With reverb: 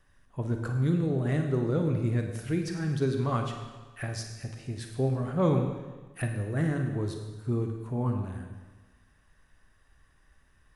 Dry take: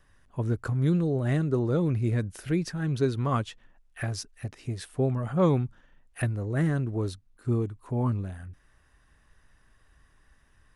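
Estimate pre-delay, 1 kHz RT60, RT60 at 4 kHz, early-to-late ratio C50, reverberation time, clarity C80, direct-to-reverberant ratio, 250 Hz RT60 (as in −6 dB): 27 ms, 1.3 s, 1.3 s, 5.0 dB, 1.3 s, 7.0 dB, 3.5 dB, 1.3 s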